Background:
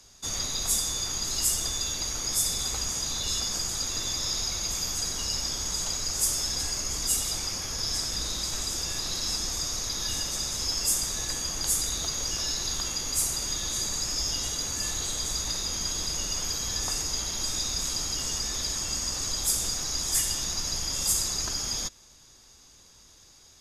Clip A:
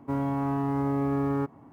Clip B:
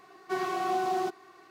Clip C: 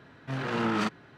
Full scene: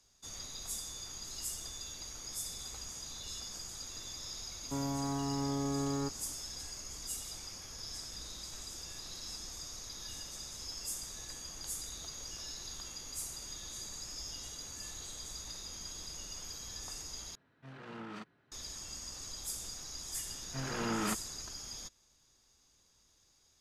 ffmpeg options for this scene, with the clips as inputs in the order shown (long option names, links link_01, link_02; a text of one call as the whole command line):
ffmpeg -i bed.wav -i cue0.wav -i cue1.wav -i cue2.wav -filter_complex "[3:a]asplit=2[link_01][link_02];[0:a]volume=-14.5dB,asplit=2[link_03][link_04];[link_03]atrim=end=17.354[link_05];[link_01]atrim=end=1.17,asetpts=PTS-STARTPTS,volume=-18dB[link_06];[link_04]atrim=start=18.516[link_07];[1:a]atrim=end=1.72,asetpts=PTS-STARTPTS,volume=-8dB,afade=type=in:duration=0.004:curve=hsin,afade=type=out:start_time=1.716:duration=0.004:curve=hsin,adelay=4630[link_08];[link_02]atrim=end=1.17,asetpts=PTS-STARTPTS,volume=-7dB,afade=type=in:duration=0.004:curve=hsin,afade=type=out:start_time=1.166:duration=0.004:curve=hsin,adelay=20260[link_09];[link_05][link_06]acrossfade=duration=0.004:curve1=hsin:curve2=hsin[link_10];[link_10][link_07]acrossfade=duration=0.004:curve1=hsin:curve2=hsin[link_11];[link_11][link_08][link_09]amix=inputs=3:normalize=0" out.wav